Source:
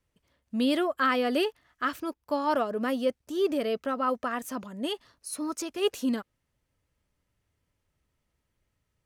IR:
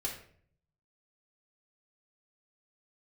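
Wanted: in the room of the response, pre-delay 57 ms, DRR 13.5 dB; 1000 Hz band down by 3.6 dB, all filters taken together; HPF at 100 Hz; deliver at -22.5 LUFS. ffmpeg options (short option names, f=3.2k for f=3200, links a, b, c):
-filter_complex "[0:a]highpass=100,equalizer=f=1k:t=o:g=-5,asplit=2[a][b];[1:a]atrim=start_sample=2205,adelay=57[c];[b][c]afir=irnorm=-1:irlink=0,volume=-15.5dB[d];[a][d]amix=inputs=2:normalize=0,volume=8dB"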